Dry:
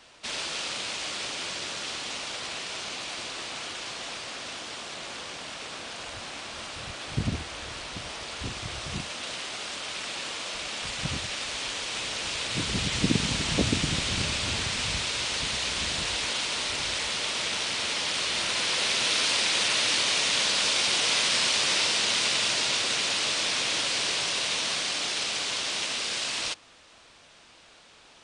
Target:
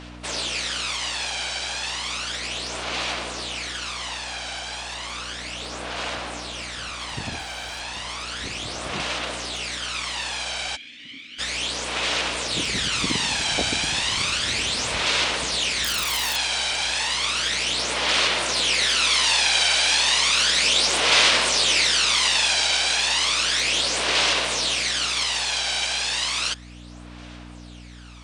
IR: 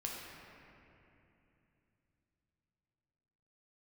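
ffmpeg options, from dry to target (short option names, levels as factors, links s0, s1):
-filter_complex "[0:a]asettb=1/sr,asplit=3[s0][s1][s2];[s0]atrim=end=15.844[s3];[s1]atrim=start=15.84:end=16.36,asetpts=PTS-STARTPTS,afade=t=in:d=0.004:c=qsin,afade=t=out:st=0.516:d=0.004:c=qsin,aeval=exprs='(mod(11.9*val(0)+1,2)-1)/11.9':c=same[s4];[s2]atrim=start=16.356[s5];[s3][s4]acrossfade=d=0.004:c1=hsin:c2=qsin[s6];[s6][s5]acrossfade=d=0.004:c1=qsin:c2=hsin,aeval=exprs='val(0)+0.0126*(sin(2*PI*60*n/s)+sin(2*PI*2*60*n/s)/2+sin(2*PI*3*60*n/s)/3+sin(2*PI*4*60*n/s)/4+sin(2*PI*5*60*n/s)/5)':c=same,bass=f=250:g=-15,treble=f=4000:g=-1,asettb=1/sr,asplit=3[s7][s8][s9];[s7]atrim=end=7.394[s10];[s8]atrim=start=7.39:end=7.8,asetpts=PTS-STARTPTS,afade=t=in:d=0.004:c=qsin,afade=t=out:st=0.406:d=0.004:c=qsin,volume=47.3,asoftclip=hard,volume=0.0211[s11];[s9]atrim=start=7.796[s12];[s10][s11]acrossfade=d=0.004:c1=hsin:c2=qsin[s13];[s13][s12]acrossfade=d=0.004:c1=qsin:c2=hsin,asplit=3[s14][s15][s16];[s14]afade=t=out:st=10.75:d=0.02[s17];[s15]asplit=3[s18][s19][s20];[s18]bandpass=f=270:t=q:w=8,volume=1[s21];[s19]bandpass=f=2290:t=q:w=8,volume=0.501[s22];[s20]bandpass=f=3010:t=q:w=8,volume=0.355[s23];[s21][s22][s23]amix=inputs=3:normalize=0,afade=t=in:st=10.75:d=0.02,afade=t=out:st=11.38:d=0.02[s24];[s16]afade=t=in:st=11.38:d=0.02[s25];[s17][s24][s25]amix=inputs=3:normalize=0,aphaser=in_gain=1:out_gain=1:delay=1.3:decay=0.54:speed=0.33:type=sinusoidal,volume=1.68"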